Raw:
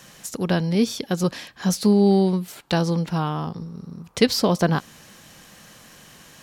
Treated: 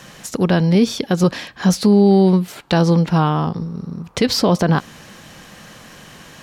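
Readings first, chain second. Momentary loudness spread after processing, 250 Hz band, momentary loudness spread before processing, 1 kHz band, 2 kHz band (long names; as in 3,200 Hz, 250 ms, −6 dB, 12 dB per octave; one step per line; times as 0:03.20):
12 LU, +6.0 dB, 15 LU, +6.0 dB, +4.5 dB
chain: high-shelf EQ 5,700 Hz −9.5 dB
brickwall limiter −14 dBFS, peak gain reduction 9.5 dB
level +8.5 dB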